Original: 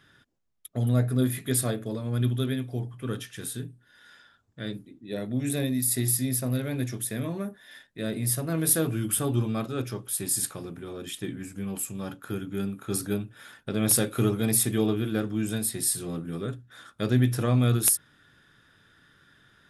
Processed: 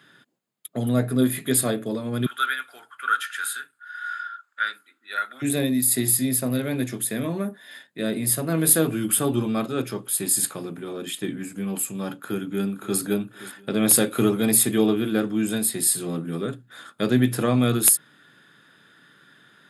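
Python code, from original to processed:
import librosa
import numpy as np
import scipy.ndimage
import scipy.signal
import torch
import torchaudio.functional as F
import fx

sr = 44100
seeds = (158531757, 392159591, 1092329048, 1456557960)

y = fx.highpass_res(x, sr, hz=1400.0, q=14.0, at=(2.26, 5.42))
y = fx.echo_throw(y, sr, start_s=12.14, length_s=0.85, ms=520, feedback_pct=35, wet_db=-16.5)
y = scipy.signal.sosfilt(scipy.signal.butter(4, 150.0, 'highpass', fs=sr, output='sos'), y)
y = fx.notch(y, sr, hz=5700.0, q=5.7)
y = y * 10.0 ** (5.5 / 20.0)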